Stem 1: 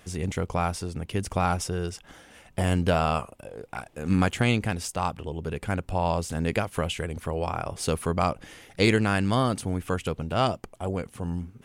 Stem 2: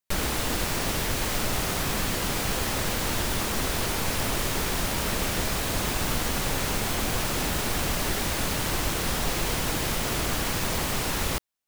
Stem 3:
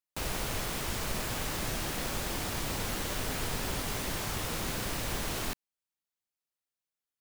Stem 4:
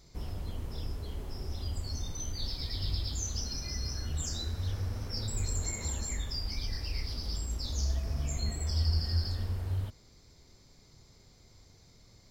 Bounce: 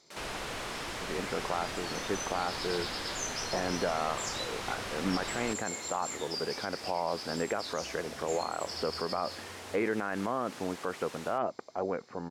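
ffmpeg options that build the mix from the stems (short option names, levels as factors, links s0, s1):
-filter_complex "[0:a]lowpass=f=1900:w=0.5412,lowpass=f=1900:w=1.3066,adelay=950,volume=1.12[s0];[1:a]volume=0.15[s1];[2:a]asplit=2[s2][s3];[s3]highpass=f=720:p=1,volume=4.47,asoftclip=type=tanh:threshold=0.0944[s4];[s2][s4]amix=inputs=2:normalize=0,lowpass=f=2700:p=1,volume=0.501,volume=0.531[s5];[3:a]volume=1.06[s6];[s0][s1][s6]amix=inputs=3:normalize=0,highpass=340,alimiter=limit=0.1:level=0:latency=1:release=66,volume=1[s7];[s5][s7]amix=inputs=2:normalize=0,lowpass=9400"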